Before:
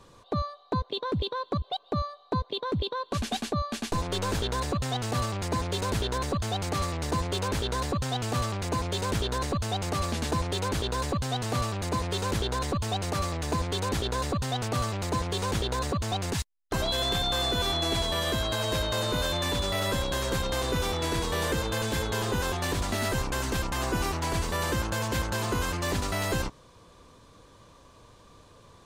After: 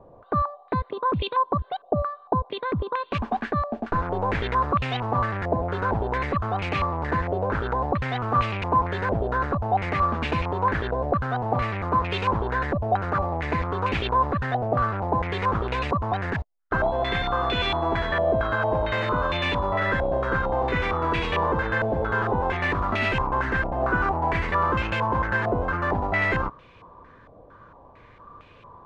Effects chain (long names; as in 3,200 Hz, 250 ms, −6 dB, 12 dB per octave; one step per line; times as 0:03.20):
low-pass on a step sequencer 4.4 Hz 690–2,500 Hz
level +2 dB